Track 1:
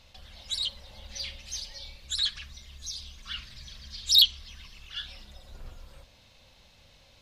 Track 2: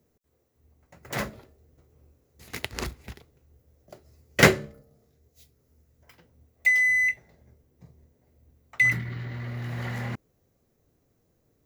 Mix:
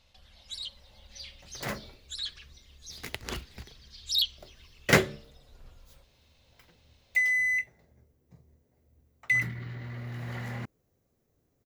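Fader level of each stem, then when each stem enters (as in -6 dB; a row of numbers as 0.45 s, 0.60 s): -8.0 dB, -4.5 dB; 0.00 s, 0.50 s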